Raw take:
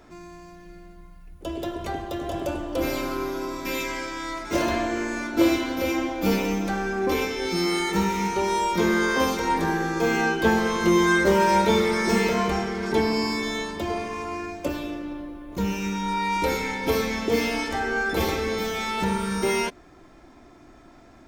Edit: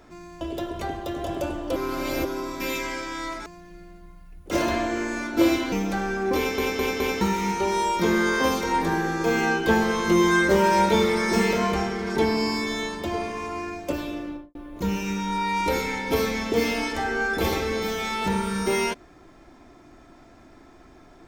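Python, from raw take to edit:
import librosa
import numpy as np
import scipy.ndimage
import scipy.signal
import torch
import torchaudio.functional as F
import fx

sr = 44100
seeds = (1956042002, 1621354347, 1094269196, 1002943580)

y = fx.studio_fade_out(x, sr, start_s=15.04, length_s=0.27)
y = fx.edit(y, sr, fx.move(start_s=0.41, length_s=1.05, to_s=4.51),
    fx.reverse_span(start_s=2.81, length_s=0.49),
    fx.cut(start_s=5.72, length_s=0.76),
    fx.stutter_over(start_s=7.13, slice_s=0.21, count=4), tone=tone)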